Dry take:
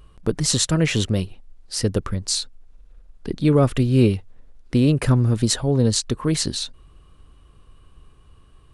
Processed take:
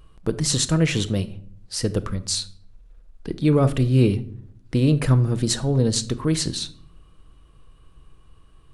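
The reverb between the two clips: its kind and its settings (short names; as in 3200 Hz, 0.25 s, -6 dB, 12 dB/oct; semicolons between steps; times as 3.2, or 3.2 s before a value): shoebox room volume 970 m³, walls furnished, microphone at 0.63 m; gain -2 dB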